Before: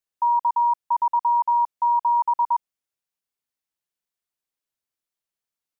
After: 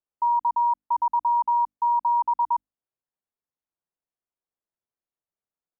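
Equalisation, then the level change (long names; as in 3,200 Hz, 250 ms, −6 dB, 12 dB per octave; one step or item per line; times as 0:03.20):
low-pass filter 1,100 Hz 12 dB per octave
mains-hum notches 50/100/150/200/250/300 Hz
0.0 dB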